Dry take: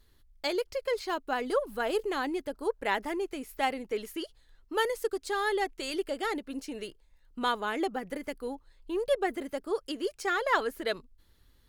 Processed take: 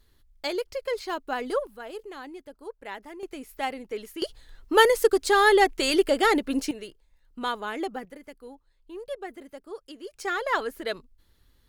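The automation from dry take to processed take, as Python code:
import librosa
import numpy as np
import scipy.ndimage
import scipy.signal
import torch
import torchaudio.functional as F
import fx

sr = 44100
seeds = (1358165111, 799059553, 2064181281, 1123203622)

y = fx.gain(x, sr, db=fx.steps((0.0, 1.0), (1.67, -9.0), (3.23, -1.0), (4.22, 11.0), (6.71, -0.5), (8.05, -8.0), (10.13, 0.5)))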